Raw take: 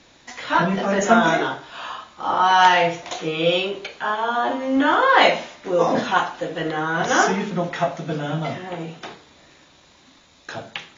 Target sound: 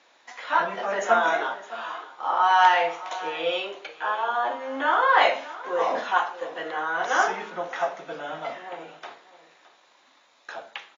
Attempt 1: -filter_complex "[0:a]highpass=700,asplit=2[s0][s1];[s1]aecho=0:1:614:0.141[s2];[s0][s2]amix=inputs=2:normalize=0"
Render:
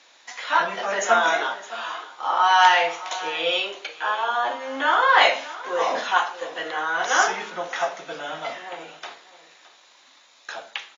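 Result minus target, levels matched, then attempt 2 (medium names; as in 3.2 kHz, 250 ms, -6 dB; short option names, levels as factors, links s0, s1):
4 kHz band +5.0 dB
-filter_complex "[0:a]highpass=700,highshelf=f=2400:g=-11.5,asplit=2[s0][s1];[s1]aecho=0:1:614:0.141[s2];[s0][s2]amix=inputs=2:normalize=0"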